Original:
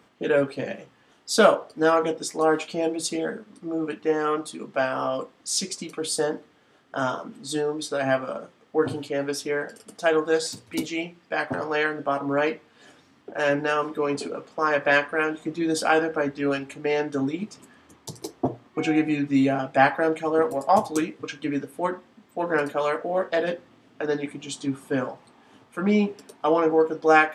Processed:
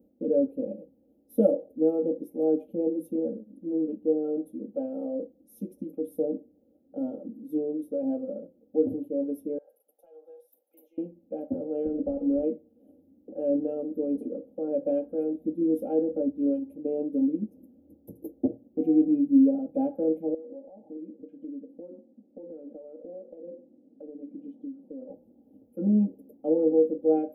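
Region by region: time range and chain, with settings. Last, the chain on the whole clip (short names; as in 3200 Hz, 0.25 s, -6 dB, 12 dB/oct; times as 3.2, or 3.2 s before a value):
9.58–10.98 HPF 740 Hz 24 dB/oct + compressor, threshold -36 dBFS
11.85–12.43 CVSD 16 kbps + three-band squash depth 100%
20.34–25.1 BPF 200–2500 Hz + compressor 16:1, threshold -35 dBFS
whole clip: inverse Chebyshev band-stop 990–7800 Hz, stop band 40 dB; bell 8400 Hz -13 dB 0.54 oct; comb 3.7 ms, depth 96%; gain -3.5 dB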